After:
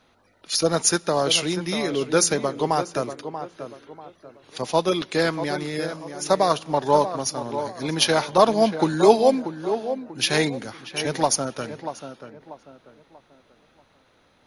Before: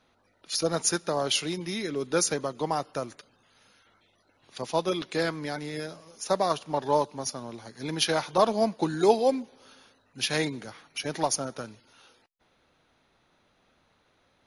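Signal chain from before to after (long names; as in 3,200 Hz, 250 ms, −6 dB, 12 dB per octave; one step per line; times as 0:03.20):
tape delay 638 ms, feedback 38%, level −8.5 dB, low-pass 1,400 Hz
level +6 dB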